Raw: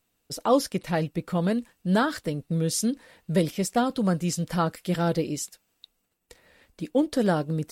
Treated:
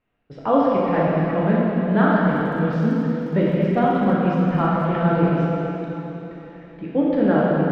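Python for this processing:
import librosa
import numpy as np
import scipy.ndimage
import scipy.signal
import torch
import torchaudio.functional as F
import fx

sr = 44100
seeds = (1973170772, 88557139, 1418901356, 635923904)

y = scipy.signal.sosfilt(scipy.signal.butter(4, 2500.0, 'lowpass', fs=sr, output='sos'), x)
y = fx.rev_plate(y, sr, seeds[0], rt60_s=3.6, hf_ratio=0.95, predelay_ms=0, drr_db=-6.5)
y = fx.dmg_crackle(y, sr, seeds[1], per_s=58.0, level_db=-42.0, at=(2.24, 4.88), fade=0.02)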